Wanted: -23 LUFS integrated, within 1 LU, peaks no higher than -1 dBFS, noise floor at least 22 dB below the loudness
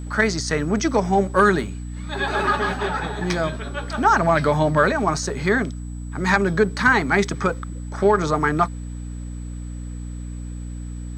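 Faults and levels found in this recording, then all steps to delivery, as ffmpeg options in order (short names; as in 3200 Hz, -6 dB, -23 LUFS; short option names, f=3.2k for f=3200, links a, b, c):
hum 60 Hz; harmonics up to 300 Hz; hum level -29 dBFS; steady tone 7900 Hz; tone level -49 dBFS; loudness -20.5 LUFS; peak -3.5 dBFS; loudness target -23.0 LUFS
-> -af "bandreject=f=60:t=h:w=4,bandreject=f=120:t=h:w=4,bandreject=f=180:t=h:w=4,bandreject=f=240:t=h:w=4,bandreject=f=300:t=h:w=4"
-af "bandreject=f=7.9k:w=30"
-af "volume=-2.5dB"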